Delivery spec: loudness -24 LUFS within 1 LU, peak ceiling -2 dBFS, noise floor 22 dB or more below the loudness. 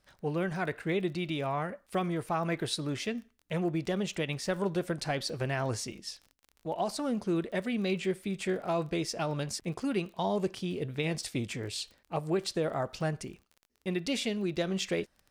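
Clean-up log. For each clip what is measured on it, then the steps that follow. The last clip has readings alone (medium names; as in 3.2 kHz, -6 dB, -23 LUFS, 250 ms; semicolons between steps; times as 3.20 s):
tick rate 23 per s; loudness -33.0 LUFS; peak level -18.0 dBFS; loudness target -24.0 LUFS
-> de-click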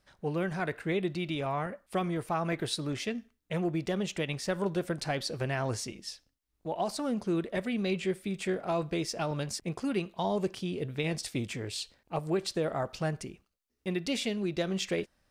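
tick rate 0 per s; loudness -33.0 LUFS; peak level -18.0 dBFS; loudness target -24.0 LUFS
-> trim +9 dB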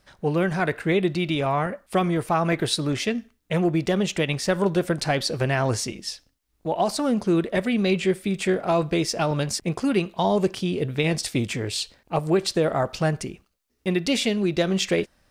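loudness -24.0 LUFS; peak level -9.0 dBFS; noise floor -69 dBFS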